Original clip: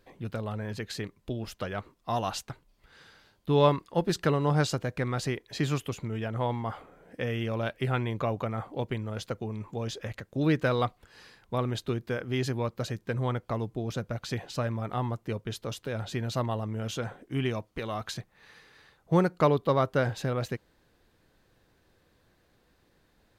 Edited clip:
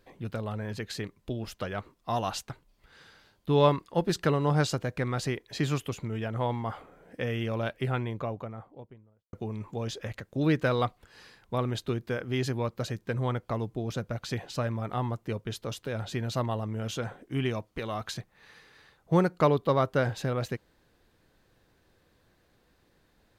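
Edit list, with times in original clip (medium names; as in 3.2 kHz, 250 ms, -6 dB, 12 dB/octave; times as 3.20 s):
7.54–9.33 s: studio fade out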